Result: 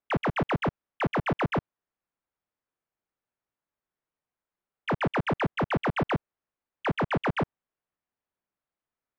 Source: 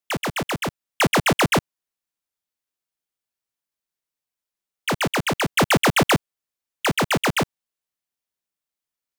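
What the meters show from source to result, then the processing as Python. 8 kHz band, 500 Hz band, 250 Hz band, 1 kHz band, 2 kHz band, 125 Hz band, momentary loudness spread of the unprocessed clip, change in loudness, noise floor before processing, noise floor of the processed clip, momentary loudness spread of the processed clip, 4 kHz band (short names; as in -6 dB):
under -30 dB, -6.0 dB, -5.5 dB, -6.5 dB, -10.0 dB, -4.5 dB, 10 LU, -8.0 dB, under -85 dBFS, under -85 dBFS, 5 LU, -16.5 dB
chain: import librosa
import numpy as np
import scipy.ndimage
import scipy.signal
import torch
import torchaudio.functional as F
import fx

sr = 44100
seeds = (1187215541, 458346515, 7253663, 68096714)

y = fx.level_steps(x, sr, step_db=15)
y = scipy.signal.sosfilt(scipy.signal.butter(2, 1600.0, 'lowpass', fs=sr, output='sos'), y)
y = fx.doppler_dist(y, sr, depth_ms=0.14)
y = y * librosa.db_to_amplitude(6.0)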